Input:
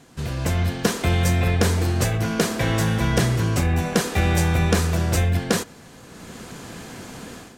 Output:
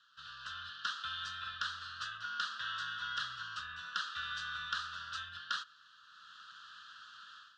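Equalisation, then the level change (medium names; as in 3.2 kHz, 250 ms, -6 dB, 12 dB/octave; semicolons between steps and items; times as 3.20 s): elliptic high-pass 1.3 kHz, stop band 40 dB; Butterworth band-stop 2.2 kHz, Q 1.2; low-pass 3.5 kHz 24 dB/octave; -1.5 dB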